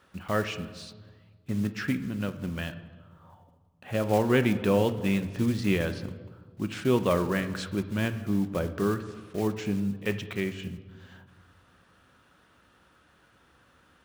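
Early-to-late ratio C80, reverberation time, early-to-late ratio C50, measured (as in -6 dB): 14.0 dB, 1.5 s, 12.5 dB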